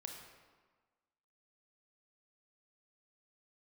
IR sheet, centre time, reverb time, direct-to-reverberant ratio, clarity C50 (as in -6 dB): 50 ms, 1.4 s, 2.0 dB, 3.5 dB